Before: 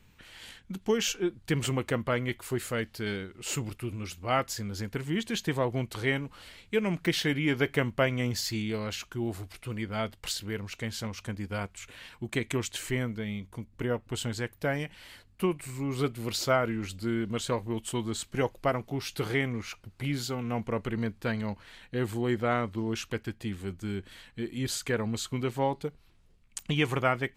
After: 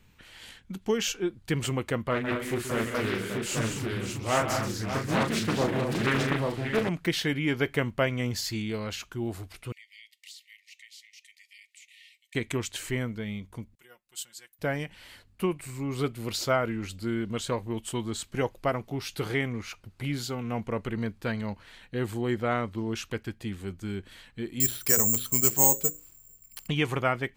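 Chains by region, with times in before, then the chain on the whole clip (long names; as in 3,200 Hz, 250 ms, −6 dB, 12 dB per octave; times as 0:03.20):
0:02.11–0:06.89: double-tracking delay 36 ms −5.5 dB + multi-tap delay 131/156/197/241/584/833 ms −10/−18/−7.5/−10/−8.5/−3 dB + highs frequency-modulated by the lows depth 0.58 ms
0:09.72–0:12.35: linear-phase brick-wall high-pass 1,800 Hz + high-shelf EQ 9,100 Hz −4 dB + downward compressor 2 to 1, threshold −54 dBFS
0:13.75–0:14.59: first-order pre-emphasis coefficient 0.97 + comb filter 5.6 ms, depth 77% + expander for the loud parts, over −52 dBFS
0:24.60–0:26.68: mains-hum notches 60/120/180/240/300/360/420/480/540 Hz + bad sample-rate conversion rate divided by 6×, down filtered, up zero stuff
whole clip: no processing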